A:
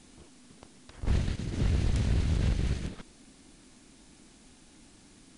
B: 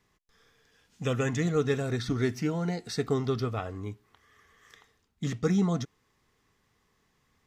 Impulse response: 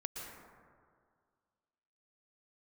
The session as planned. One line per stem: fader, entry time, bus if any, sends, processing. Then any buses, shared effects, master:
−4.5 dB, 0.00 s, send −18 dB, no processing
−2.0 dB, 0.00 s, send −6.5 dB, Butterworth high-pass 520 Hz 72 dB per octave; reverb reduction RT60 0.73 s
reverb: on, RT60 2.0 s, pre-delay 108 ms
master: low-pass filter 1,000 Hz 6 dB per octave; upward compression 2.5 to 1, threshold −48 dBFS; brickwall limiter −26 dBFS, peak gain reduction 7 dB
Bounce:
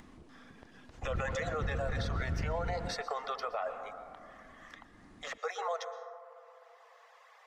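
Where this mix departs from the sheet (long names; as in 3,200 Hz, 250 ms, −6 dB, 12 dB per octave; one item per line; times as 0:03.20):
stem A: send off
stem B −2.0 dB → +8.5 dB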